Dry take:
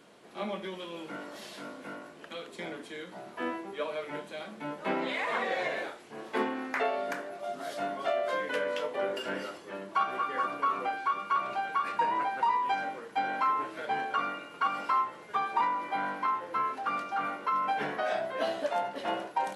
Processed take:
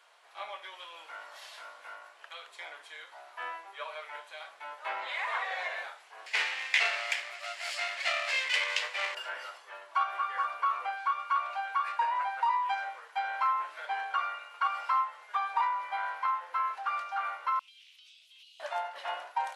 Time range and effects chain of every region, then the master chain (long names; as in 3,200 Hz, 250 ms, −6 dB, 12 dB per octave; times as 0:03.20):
0:06.26–0:09.15: lower of the sound and its delayed copy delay 0.4 ms + flat-topped bell 4,100 Hz +12 dB 2.6 octaves
0:17.59–0:18.60: elliptic high-pass filter 2,800 Hz + downward compressor 10 to 1, threshold −51 dBFS + highs frequency-modulated by the lows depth 0.18 ms
whole clip: high-pass filter 770 Hz 24 dB per octave; high-shelf EQ 5,800 Hz −5.5 dB